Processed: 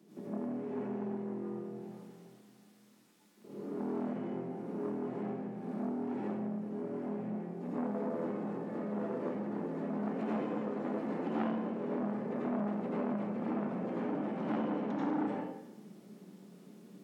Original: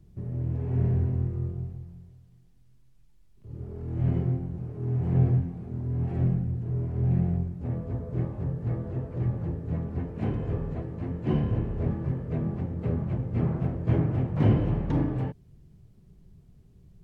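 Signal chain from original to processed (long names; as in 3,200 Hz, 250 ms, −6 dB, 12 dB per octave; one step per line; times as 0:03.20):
downward compressor 6 to 1, threshold −37 dBFS, peak gain reduction 19.5 dB
elliptic high-pass filter 210 Hz, stop band 60 dB
dense smooth reverb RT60 0.89 s, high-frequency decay 0.75×, pre-delay 75 ms, DRR −7 dB
saturating transformer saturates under 900 Hz
level +5 dB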